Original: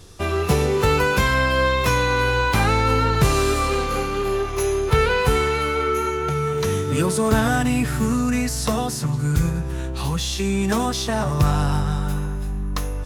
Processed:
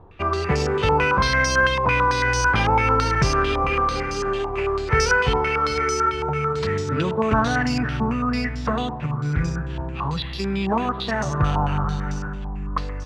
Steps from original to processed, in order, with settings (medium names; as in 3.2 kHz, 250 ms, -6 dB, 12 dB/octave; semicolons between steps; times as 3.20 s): two-band feedback delay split 320 Hz, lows 421 ms, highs 127 ms, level -15.5 dB; careless resampling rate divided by 6×, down filtered, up hold; step-sequenced low-pass 9 Hz 910–5500 Hz; trim -3 dB